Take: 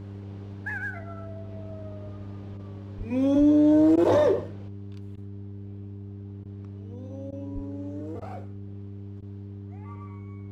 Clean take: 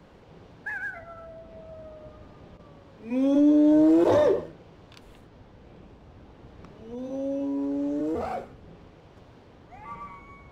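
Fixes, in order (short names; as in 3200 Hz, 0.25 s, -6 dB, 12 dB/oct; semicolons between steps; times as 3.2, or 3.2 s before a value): de-hum 99.7 Hz, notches 4; de-plosive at 2.97/3.38/7.54; interpolate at 3.96/5.16/6.44/7.31/8.2/9.21, 13 ms; gain correction +9 dB, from 4.68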